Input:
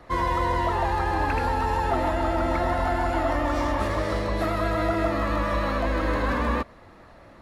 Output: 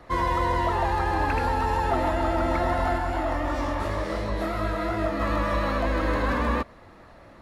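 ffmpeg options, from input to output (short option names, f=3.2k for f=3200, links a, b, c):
-filter_complex "[0:a]asplit=3[a][b][c];[a]afade=t=out:st=2.97:d=0.02[d];[b]flanger=delay=19:depth=5.8:speed=2.8,afade=t=in:st=2.97:d=0.02,afade=t=out:st=5.19:d=0.02[e];[c]afade=t=in:st=5.19:d=0.02[f];[d][e][f]amix=inputs=3:normalize=0"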